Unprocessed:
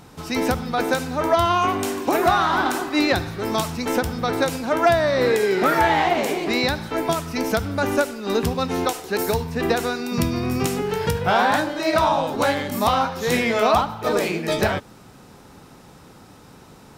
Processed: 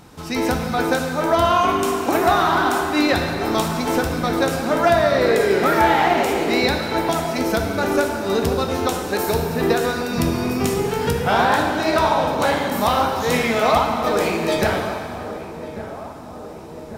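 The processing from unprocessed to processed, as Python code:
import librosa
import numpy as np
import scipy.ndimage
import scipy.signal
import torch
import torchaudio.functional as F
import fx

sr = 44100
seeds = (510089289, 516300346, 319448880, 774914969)

p1 = x + fx.echo_filtered(x, sr, ms=1145, feedback_pct=69, hz=1200.0, wet_db=-13.0, dry=0)
y = fx.rev_plate(p1, sr, seeds[0], rt60_s=2.5, hf_ratio=0.9, predelay_ms=0, drr_db=3.0)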